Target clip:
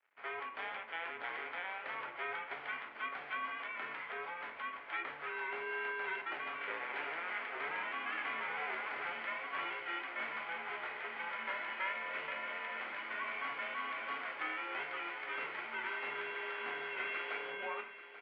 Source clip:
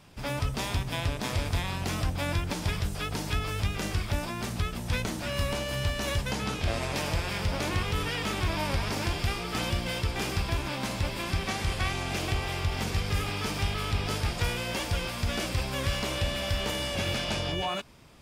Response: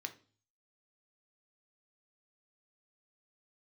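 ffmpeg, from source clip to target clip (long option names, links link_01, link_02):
-filter_complex "[1:a]atrim=start_sample=2205,asetrate=28224,aresample=44100[link_01];[0:a][link_01]afir=irnorm=-1:irlink=0,aeval=exprs='sgn(val(0))*max(abs(val(0))-0.00224,0)':channel_layout=same,aderivative,highpass=frequency=420:width_type=q:width=0.5412,highpass=frequency=420:width_type=q:width=1.307,lowpass=frequency=2400:width_type=q:width=0.5176,lowpass=frequency=2400:width_type=q:width=0.7071,lowpass=frequency=2400:width_type=q:width=1.932,afreqshift=-170,aecho=1:1:837|1674|2511|3348|4185:0.2|0.102|0.0519|0.0265|0.0135,volume=9dB"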